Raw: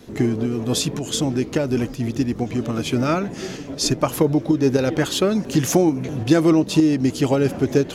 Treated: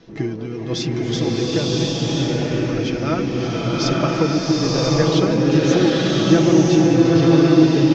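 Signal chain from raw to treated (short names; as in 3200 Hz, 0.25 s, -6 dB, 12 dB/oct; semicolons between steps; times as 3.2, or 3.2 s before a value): elliptic low-pass 5800 Hz, stop band 60 dB; comb 6.1 ms, depth 52%; bloom reverb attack 1.04 s, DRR -5.5 dB; gain -3.5 dB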